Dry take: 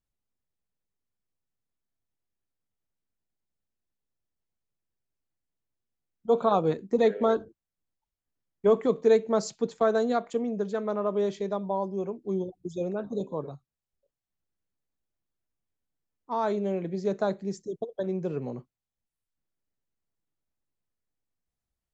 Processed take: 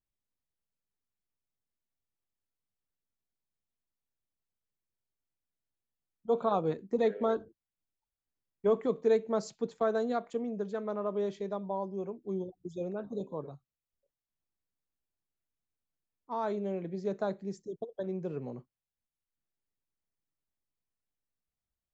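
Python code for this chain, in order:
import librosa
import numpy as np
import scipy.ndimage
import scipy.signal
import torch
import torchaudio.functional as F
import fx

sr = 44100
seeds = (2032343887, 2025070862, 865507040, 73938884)

y = fx.high_shelf(x, sr, hz=4900.0, db=-5.5)
y = y * librosa.db_to_amplitude(-5.5)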